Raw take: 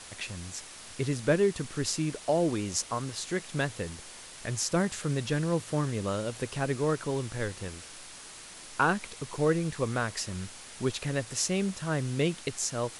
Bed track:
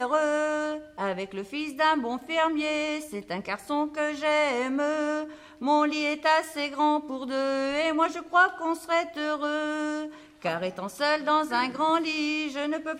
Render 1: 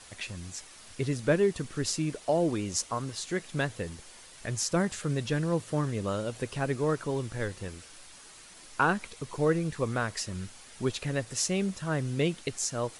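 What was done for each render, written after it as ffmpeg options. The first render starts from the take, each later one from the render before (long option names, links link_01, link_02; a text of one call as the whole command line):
ffmpeg -i in.wav -af "afftdn=noise_reduction=6:noise_floor=-47" out.wav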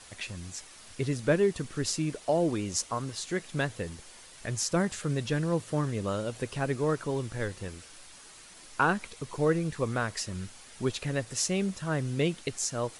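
ffmpeg -i in.wav -af anull out.wav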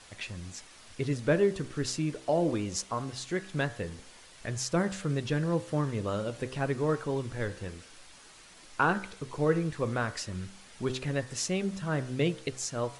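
ffmpeg -i in.wav -af "highshelf=frequency=8400:gain=-10.5,bandreject=frequency=64.59:width_type=h:width=4,bandreject=frequency=129.18:width_type=h:width=4,bandreject=frequency=193.77:width_type=h:width=4,bandreject=frequency=258.36:width_type=h:width=4,bandreject=frequency=322.95:width_type=h:width=4,bandreject=frequency=387.54:width_type=h:width=4,bandreject=frequency=452.13:width_type=h:width=4,bandreject=frequency=516.72:width_type=h:width=4,bandreject=frequency=581.31:width_type=h:width=4,bandreject=frequency=645.9:width_type=h:width=4,bandreject=frequency=710.49:width_type=h:width=4,bandreject=frequency=775.08:width_type=h:width=4,bandreject=frequency=839.67:width_type=h:width=4,bandreject=frequency=904.26:width_type=h:width=4,bandreject=frequency=968.85:width_type=h:width=4,bandreject=frequency=1033.44:width_type=h:width=4,bandreject=frequency=1098.03:width_type=h:width=4,bandreject=frequency=1162.62:width_type=h:width=4,bandreject=frequency=1227.21:width_type=h:width=4,bandreject=frequency=1291.8:width_type=h:width=4,bandreject=frequency=1356.39:width_type=h:width=4,bandreject=frequency=1420.98:width_type=h:width=4,bandreject=frequency=1485.57:width_type=h:width=4,bandreject=frequency=1550.16:width_type=h:width=4,bandreject=frequency=1614.75:width_type=h:width=4,bandreject=frequency=1679.34:width_type=h:width=4,bandreject=frequency=1743.93:width_type=h:width=4,bandreject=frequency=1808.52:width_type=h:width=4,bandreject=frequency=1873.11:width_type=h:width=4,bandreject=frequency=1937.7:width_type=h:width=4" out.wav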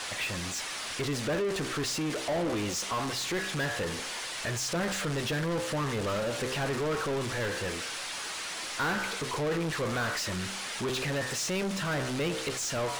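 ffmpeg -i in.wav -filter_complex "[0:a]asoftclip=type=tanh:threshold=-25.5dB,asplit=2[link_01][link_02];[link_02]highpass=frequency=720:poles=1,volume=28dB,asoftclip=type=tanh:threshold=-25.5dB[link_03];[link_01][link_03]amix=inputs=2:normalize=0,lowpass=frequency=6300:poles=1,volume=-6dB" out.wav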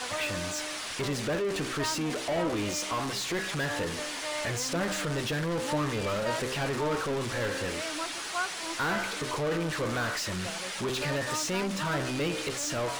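ffmpeg -i in.wav -i bed.wav -filter_complex "[1:a]volume=-12.5dB[link_01];[0:a][link_01]amix=inputs=2:normalize=0" out.wav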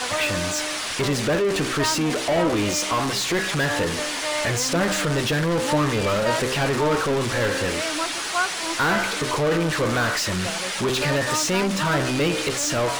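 ffmpeg -i in.wav -af "volume=8.5dB" out.wav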